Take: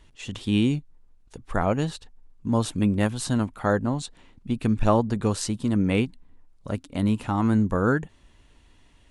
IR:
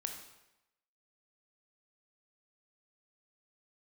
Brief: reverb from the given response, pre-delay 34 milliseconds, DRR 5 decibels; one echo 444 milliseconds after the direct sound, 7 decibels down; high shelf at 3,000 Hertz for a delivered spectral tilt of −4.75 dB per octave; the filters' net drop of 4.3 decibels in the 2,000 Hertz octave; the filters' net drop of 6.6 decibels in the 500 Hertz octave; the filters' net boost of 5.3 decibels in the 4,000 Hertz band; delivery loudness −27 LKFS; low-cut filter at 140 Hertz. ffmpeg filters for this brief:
-filter_complex "[0:a]highpass=140,equalizer=frequency=500:width_type=o:gain=-8,equalizer=frequency=2000:width_type=o:gain=-9,highshelf=frequency=3000:gain=3.5,equalizer=frequency=4000:width_type=o:gain=7,aecho=1:1:444:0.447,asplit=2[link_01][link_02];[1:a]atrim=start_sample=2205,adelay=34[link_03];[link_02][link_03]afir=irnorm=-1:irlink=0,volume=-4.5dB[link_04];[link_01][link_04]amix=inputs=2:normalize=0,volume=-0.5dB"

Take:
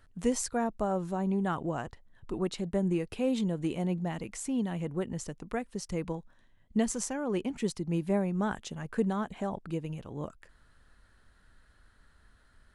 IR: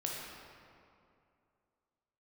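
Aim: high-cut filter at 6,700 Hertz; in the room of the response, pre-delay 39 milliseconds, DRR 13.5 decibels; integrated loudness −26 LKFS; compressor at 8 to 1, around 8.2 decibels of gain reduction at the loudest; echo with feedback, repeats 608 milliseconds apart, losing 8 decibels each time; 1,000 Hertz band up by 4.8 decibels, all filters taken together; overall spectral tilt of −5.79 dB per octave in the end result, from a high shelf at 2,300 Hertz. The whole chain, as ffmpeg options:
-filter_complex "[0:a]lowpass=6700,equalizer=frequency=1000:width_type=o:gain=8,highshelf=frequency=2300:gain=-8,acompressor=threshold=-30dB:ratio=8,aecho=1:1:608|1216|1824|2432|3040:0.398|0.159|0.0637|0.0255|0.0102,asplit=2[link_01][link_02];[1:a]atrim=start_sample=2205,adelay=39[link_03];[link_02][link_03]afir=irnorm=-1:irlink=0,volume=-16dB[link_04];[link_01][link_04]amix=inputs=2:normalize=0,volume=10dB"

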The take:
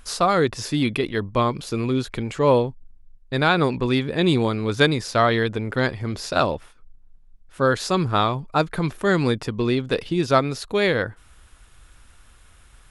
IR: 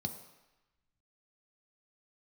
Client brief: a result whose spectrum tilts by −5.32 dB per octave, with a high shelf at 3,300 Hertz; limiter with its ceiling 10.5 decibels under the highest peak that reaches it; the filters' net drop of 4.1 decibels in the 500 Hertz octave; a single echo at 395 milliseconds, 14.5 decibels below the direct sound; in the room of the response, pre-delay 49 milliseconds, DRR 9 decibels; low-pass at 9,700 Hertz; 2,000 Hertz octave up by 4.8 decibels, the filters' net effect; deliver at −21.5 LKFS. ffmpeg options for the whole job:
-filter_complex "[0:a]lowpass=9700,equalizer=frequency=500:width_type=o:gain=-5.5,equalizer=frequency=2000:width_type=o:gain=9,highshelf=frequency=3300:gain=-7.5,alimiter=limit=-13.5dB:level=0:latency=1,aecho=1:1:395:0.188,asplit=2[link_01][link_02];[1:a]atrim=start_sample=2205,adelay=49[link_03];[link_02][link_03]afir=irnorm=-1:irlink=0,volume=-9dB[link_04];[link_01][link_04]amix=inputs=2:normalize=0,volume=1.5dB"

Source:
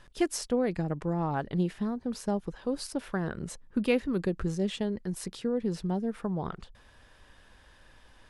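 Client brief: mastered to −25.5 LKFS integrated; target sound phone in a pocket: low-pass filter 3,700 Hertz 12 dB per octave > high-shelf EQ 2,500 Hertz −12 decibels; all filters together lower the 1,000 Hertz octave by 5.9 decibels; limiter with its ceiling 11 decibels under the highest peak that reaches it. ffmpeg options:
ffmpeg -i in.wav -af "equalizer=frequency=1000:width_type=o:gain=-6.5,alimiter=level_in=1dB:limit=-24dB:level=0:latency=1,volume=-1dB,lowpass=3700,highshelf=frequency=2500:gain=-12,volume=10.5dB" out.wav

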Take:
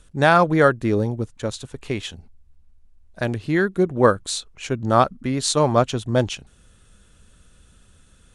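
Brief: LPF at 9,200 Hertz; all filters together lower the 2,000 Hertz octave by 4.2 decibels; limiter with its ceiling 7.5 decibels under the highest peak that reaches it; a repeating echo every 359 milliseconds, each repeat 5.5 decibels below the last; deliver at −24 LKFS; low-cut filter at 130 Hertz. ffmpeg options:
ffmpeg -i in.wav -af "highpass=130,lowpass=9200,equalizer=frequency=2000:width_type=o:gain=-6,alimiter=limit=-9.5dB:level=0:latency=1,aecho=1:1:359|718|1077|1436|1795|2154|2513:0.531|0.281|0.149|0.079|0.0419|0.0222|0.0118,volume=-0.5dB" out.wav

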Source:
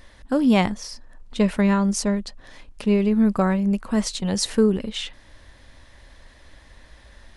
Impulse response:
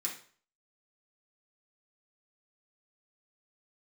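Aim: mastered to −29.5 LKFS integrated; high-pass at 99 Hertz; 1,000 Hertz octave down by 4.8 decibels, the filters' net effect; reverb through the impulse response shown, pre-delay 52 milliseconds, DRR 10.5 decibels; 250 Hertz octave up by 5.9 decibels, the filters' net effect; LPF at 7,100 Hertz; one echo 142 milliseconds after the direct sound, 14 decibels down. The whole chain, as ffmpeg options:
-filter_complex "[0:a]highpass=99,lowpass=7100,equalizer=frequency=250:width_type=o:gain=8,equalizer=frequency=1000:width_type=o:gain=-7,aecho=1:1:142:0.2,asplit=2[link_01][link_02];[1:a]atrim=start_sample=2205,adelay=52[link_03];[link_02][link_03]afir=irnorm=-1:irlink=0,volume=-12dB[link_04];[link_01][link_04]amix=inputs=2:normalize=0,volume=-13.5dB"

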